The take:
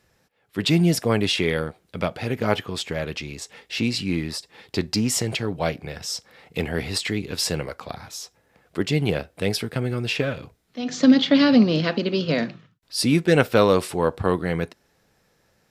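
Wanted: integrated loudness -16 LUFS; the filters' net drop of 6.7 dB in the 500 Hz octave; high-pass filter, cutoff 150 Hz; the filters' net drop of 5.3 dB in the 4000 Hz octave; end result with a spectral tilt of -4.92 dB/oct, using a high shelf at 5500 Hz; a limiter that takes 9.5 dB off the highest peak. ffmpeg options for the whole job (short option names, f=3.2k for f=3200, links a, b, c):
-af "highpass=150,equalizer=f=500:t=o:g=-8,equalizer=f=4k:t=o:g=-4.5,highshelf=f=5.5k:g=-5.5,volume=12dB,alimiter=limit=-1.5dB:level=0:latency=1"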